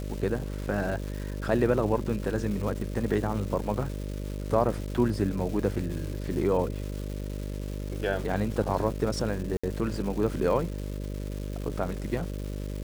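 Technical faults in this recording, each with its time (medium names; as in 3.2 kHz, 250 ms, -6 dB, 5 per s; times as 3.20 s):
buzz 50 Hz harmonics 12 -34 dBFS
crackle 570 per s -36 dBFS
9.57–9.63 s: dropout 65 ms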